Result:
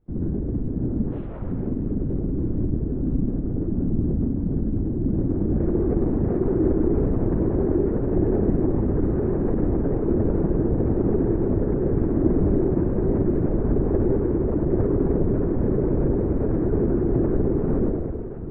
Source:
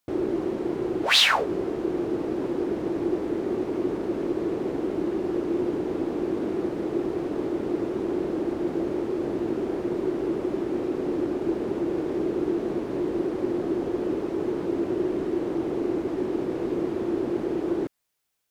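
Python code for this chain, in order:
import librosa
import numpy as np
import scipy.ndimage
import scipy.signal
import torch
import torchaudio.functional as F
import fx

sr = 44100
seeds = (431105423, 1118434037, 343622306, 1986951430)

p1 = fx.formant_shift(x, sr, semitones=-2)
p2 = fx.noise_vocoder(p1, sr, seeds[0], bands=3)
p3 = fx.quant_dither(p2, sr, seeds[1], bits=6, dither='triangular')
p4 = p2 + (p3 * 10.0 ** (-11.0 / 20.0))
p5 = fx.filter_sweep_lowpass(p4, sr, from_hz=220.0, to_hz=490.0, start_s=4.89, end_s=5.89, q=0.89)
p6 = p5 + fx.echo_diffused(p5, sr, ms=679, feedback_pct=72, wet_db=-15.0, dry=0)
p7 = fx.rev_spring(p6, sr, rt60_s=1.7, pass_ms=(50,), chirp_ms=70, drr_db=-2.5)
y = fx.lpc_vocoder(p7, sr, seeds[2], excitation='whisper', order=8)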